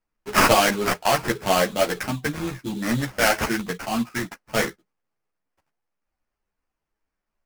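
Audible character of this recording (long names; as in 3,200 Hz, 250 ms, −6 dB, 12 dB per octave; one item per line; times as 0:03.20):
aliases and images of a low sample rate 3,700 Hz, jitter 20%
a shimmering, thickened sound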